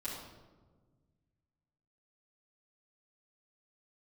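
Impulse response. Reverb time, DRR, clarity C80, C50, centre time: 1.4 s, −11.0 dB, 4.0 dB, 1.5 dB, 62 ms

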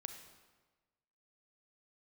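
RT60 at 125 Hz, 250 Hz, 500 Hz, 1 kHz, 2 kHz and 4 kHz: 1.4, 1.3, 1.3, 1.3, 1.2, 1.0 seconds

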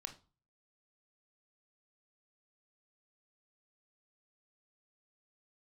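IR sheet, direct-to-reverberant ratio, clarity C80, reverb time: 6.0 dB, 19.5 dB, 0.35 s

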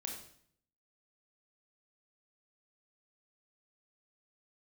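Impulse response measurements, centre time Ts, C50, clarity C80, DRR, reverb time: 33 ms, 4.5 dB, 7.5 dB, 0.5 dB, 0.60 s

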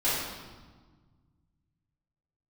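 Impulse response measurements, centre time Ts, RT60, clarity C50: 89 ms, 1.4 s, −1.5 dB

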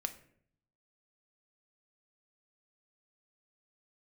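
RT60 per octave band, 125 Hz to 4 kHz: 1.0, 0.85, 0.70, 0.50, 0.55, 0.40 seconds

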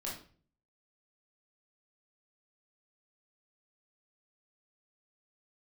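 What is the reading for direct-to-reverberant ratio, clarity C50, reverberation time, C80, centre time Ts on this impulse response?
−5.0 dB, 4.5 dB, 0.45 s, 10.5 dB, 36 ms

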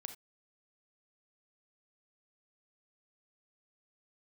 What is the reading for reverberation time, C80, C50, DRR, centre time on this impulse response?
non-exponential decay, 16.5 dB, 9.5 dB, 7.0 dB, 10 ms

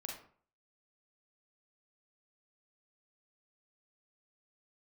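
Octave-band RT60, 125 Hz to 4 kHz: 0.50, 0.50, 0.50, 0.50, 0.40, 0.30 seconds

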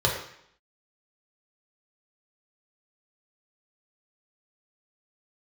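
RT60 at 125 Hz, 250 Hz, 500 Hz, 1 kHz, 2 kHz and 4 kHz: 0.65, 0.70, 0.65, 0.70, 0.70, 0.70 seconds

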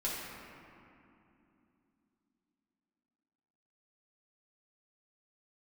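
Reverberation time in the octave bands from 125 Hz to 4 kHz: 3.5, 4.4, 2.9, 2.7, 2.3, 1.5 seconds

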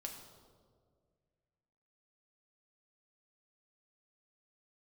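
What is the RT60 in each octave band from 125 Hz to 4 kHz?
2.5, 2.2, 2.2, 1.6, 1.0, 1.1 seconds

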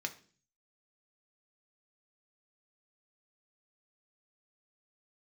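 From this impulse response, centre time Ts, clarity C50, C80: 7 ms, 15.5 dB, 20.0 dB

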